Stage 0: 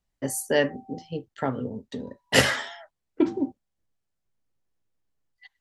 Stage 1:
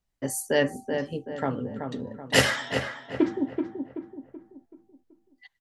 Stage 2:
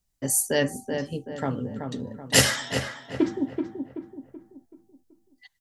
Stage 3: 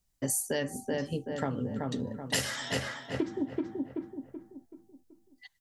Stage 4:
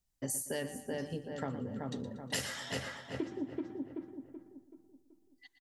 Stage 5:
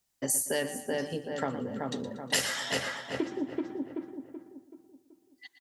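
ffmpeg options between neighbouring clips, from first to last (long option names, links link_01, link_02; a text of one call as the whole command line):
ffmpeg -i in.wav -filter_complex "[0:a]asplit=2[link_01][link_02];[link_02]adelay=380,lowpass=frequency=1900:poles=1,volume=-6dB,asplit=2[link_03][link_04];[link_04]adelay=380,lowpass=frequency=1900:poles=1,volume=0.43,asplit=2[link_05][link_06];[link_06]adelay=380,lowpass=frequency=1900:poles=1,volume=0.43,asplit=2[link_07][link_08];[link_08]adelay=380,lowpass=frequency=1900:poles=1,volume=0.43,asplit=2[link_09][link_10];[link_10]adelay=380,lowpass=frequency=1900:poles=1,volume=0.43[link_11];[link_01][link_03][link_05][link_07][link_09][link_11]amix=inputs=6:normalize=0,volume=-1dB" out.wav
ffmpeg -i in.wav -af "bass=frequency=250:gain=5,treble=frequency=4000:gain=11,volume=-1.5dB" out.wav
ffmpeg -i in.wav -af "acompressor=threshold=-27dB:ratio=12" out.wav
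ffmpeg -i in.wav -af "aecho=1:1:118|236|354|472:0.224|0.0895|0.0358|0.0143,volume=-6dB" out.wav
ffmpeg -i in.wav -af "highpass=frequency=340:poles=1,volume=8.5dB" out.wav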